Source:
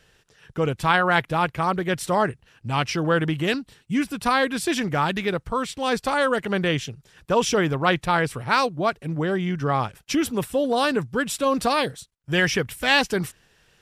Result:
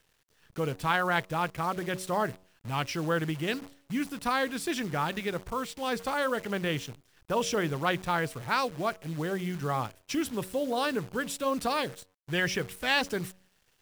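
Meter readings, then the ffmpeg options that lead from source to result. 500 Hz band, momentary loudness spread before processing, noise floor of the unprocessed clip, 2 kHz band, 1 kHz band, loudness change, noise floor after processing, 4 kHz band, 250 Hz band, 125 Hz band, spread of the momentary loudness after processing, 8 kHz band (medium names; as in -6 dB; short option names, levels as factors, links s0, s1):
-8.0 dB, 7 LU, -63 dBFS, -7.5 dB, -7.5 dB, -7.5 dB, -70 dBFS, -7.5 dB, -8.0 dB, -7.5 dB, 7 LU, -7.0 dB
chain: -af "bandreject=f=93.15:t=h:w=4,bandreject=f=186.3:t=h:w=4,bandreject=f=279.45:t=h:w=4,bandreject=f=372.6:t=h:w=4,bandreject=f=465.75:t=h:w=4,bandreject=f=558.9:t=h:w=4,bandreject=f=652.05:t=h:w=4,acrusher=bits=7:dc=4:mix=0:aa=0.000001,volume=0.422"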